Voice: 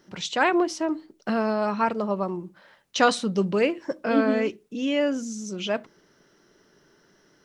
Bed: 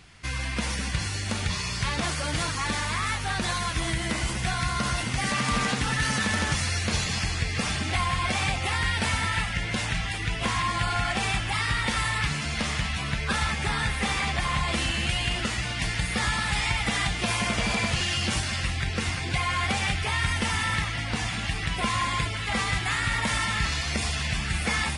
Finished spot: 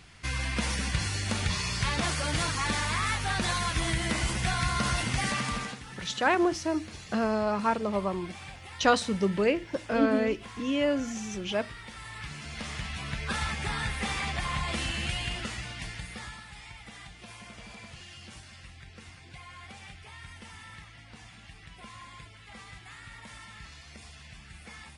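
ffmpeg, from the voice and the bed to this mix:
ffmpeg -i stem1.wav -i stem2.wav -filter_complex "[0:a]adelay=5850,volume=-3dB[link_01];[1:a]volume=12dB,afade=type=out:start_time=5.15:duration=0.66:silence=0.141254,afade=type=in:start_time=11.98:duration=1.37:silence=0.223872,afade=type=out:start_time=15.06:duration=1.41:silence=0.16788[link_02];[link_01][link_02]amix=inputs=2:normalize=0" out.wav

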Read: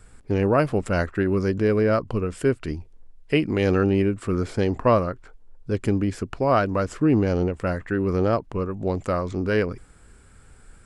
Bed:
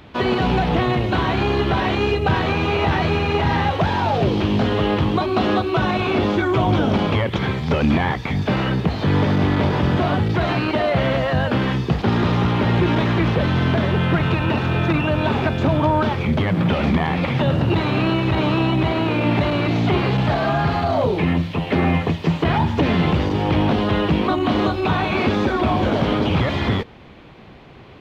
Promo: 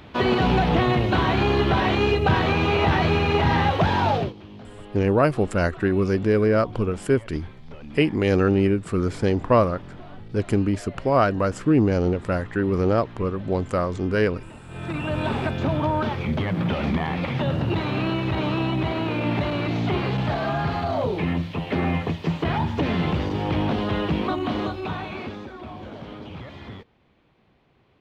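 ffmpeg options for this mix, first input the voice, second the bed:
ffmpeg -i stem1.wav -i stem2.wav -filter_complex "[0:a]adelay=4650,volume=1dB[link_01];[1:a]volume=17dB,afade=type=out:start_time=4.11:duration=0.22:silence=0.0749894,afade=type=in:start_time=14.67:duration=0.51:silence=0.125893,afade=type=out:start_time=24.28:duration=1.19:silence=0.211349[link_02];[link_01][link_02]amix=inputs=2:normalize=0" out.wav

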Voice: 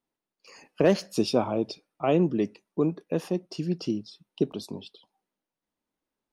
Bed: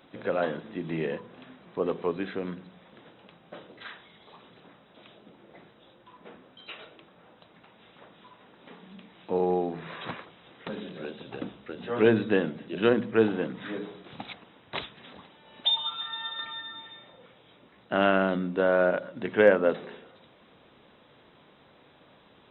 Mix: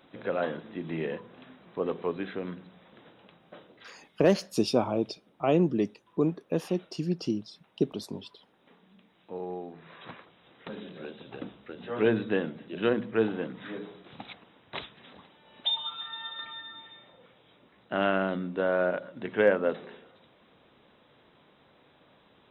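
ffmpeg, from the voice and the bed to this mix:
ffmpeg -i stem1.wav -i stem2.wav -filter_complex "[0:a]adelay=3400,volume=-1dB[link_01];[1:a]volume=5.5dB,afade=type=out:start_time=3.18:duration=0.93:silence=0.354813,afade=type=in:start_time=9.82:duration=0.98:silence=0.421697[link_02];[link_01][link_02]amix=inputs=2:normalize=0" out.wav

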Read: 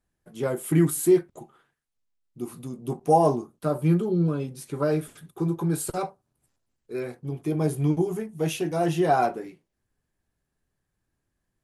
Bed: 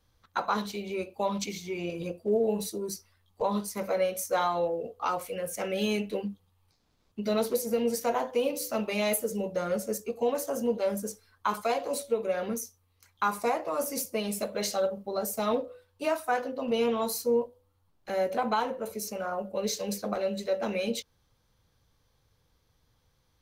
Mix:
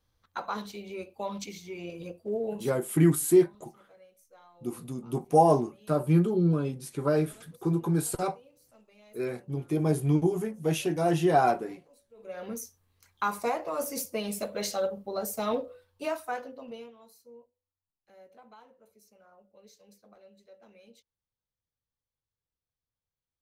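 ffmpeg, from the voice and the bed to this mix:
ffmpeg -i stem1.wav -i stem2.wav -filter_complex "[0:a]adelay=2250,volume=-1dB[link_01];[1:a]volume=22.5dB,afade=type=out:start_time=2.49:duration=0.34:silence=0.0630957,afade=type=in:start_time=12.14:duration=0.56:silence=0.0398107,afade=type=out:start_time=15.87:duration=1.05:silence=0.0595662[link_02];[link_01][link_02]amix=inputs=2:normalize=0" out.wav

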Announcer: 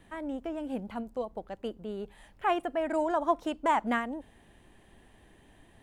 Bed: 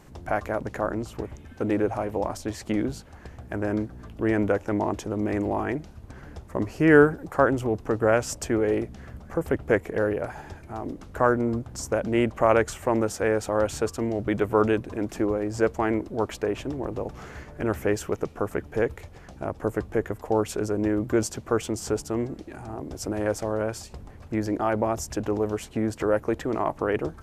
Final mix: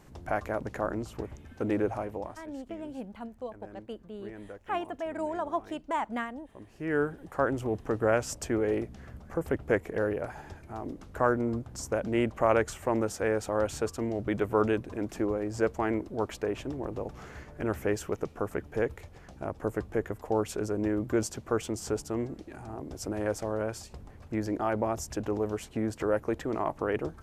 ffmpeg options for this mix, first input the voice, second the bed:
ffmpeg -i stem1.wav -i stem2.wav -filter_complex "[0:a]adelay=2250,volume=-4.5dB[link_01];[1:a]volume=13dB,afade=type=out:start_time=1.89:duration=0.57:silence=0.133352,afade=type=in:start_time=6.65:duration=1.12:silence=0.141254[link_02];[link_01][link_02]amix=inputs=2:normalize=0" out.wav

